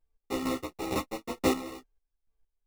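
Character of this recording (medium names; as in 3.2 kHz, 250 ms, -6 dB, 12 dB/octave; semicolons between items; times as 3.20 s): a buzz of ramps at a fixed pitch in blocks of 16 samples; chopped level 2.2 Hz, depth 65%, duty 35%; aliases and images of a low sample rate 1.6 kHz, jitter 0%; a shimmering, thickened sound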